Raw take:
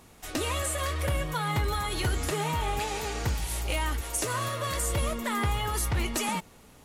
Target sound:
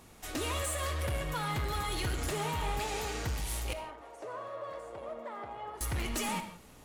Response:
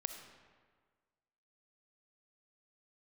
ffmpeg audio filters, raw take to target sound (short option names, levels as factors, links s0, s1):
-filter_complex "[0:a]asoftclip=type=tanh:threshold=0.0422,asettb=1/sr,asplit=3[s0][s1][s2];[s0]atrim=end=3.734[s3];[s1]atrim=start=3.73:end=5.81,asetpts=PTS-STARTPTS,afade=t=in:d=0.004:c=qsin,afade=t=out:st=2.076:d=0.004:c=qsin,bandpass=f=650:t=q:w=1.8:csg=0[s4];[s2]atrim=start=5.806[s5];[s3][s4]acrossfade=d=0.004:c1=hsin:c2=qsin[s6];[s6][s5]acrossfade=d=0.004:c1=qsin:c2=hsin[s7];[1:a]atrim=start_sample=2205,afade=t=out:st=0.23:d=0.01,atrim=end_sample=10584[s8];[s7][s8]afir=irnorm=-1:irlink=0"